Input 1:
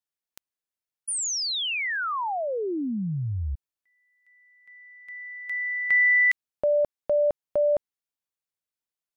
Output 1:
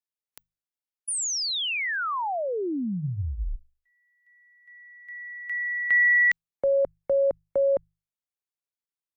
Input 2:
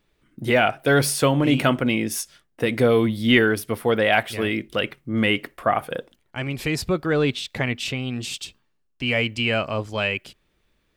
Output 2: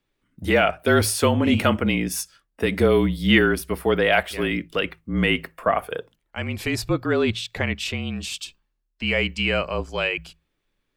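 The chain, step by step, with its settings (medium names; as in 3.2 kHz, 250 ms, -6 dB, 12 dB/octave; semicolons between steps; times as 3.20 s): spectral noise reduction 7 dB; hum notches 50/100/150/200 Hz; frequency shift -36 Hz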